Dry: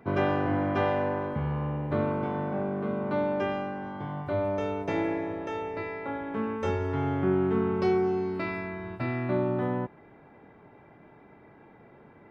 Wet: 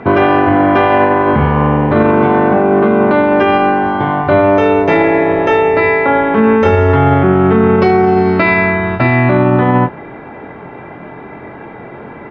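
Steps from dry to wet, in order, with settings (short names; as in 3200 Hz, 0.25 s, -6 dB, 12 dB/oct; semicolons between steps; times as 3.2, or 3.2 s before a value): LPF 3400 Hz 12 dB/oct; low shelf 430 Hz -3.5 dB; notches 50/100/150 Hz; doubler 23 ms -8 dB; maximiser +25.5 dB; gain -1 dB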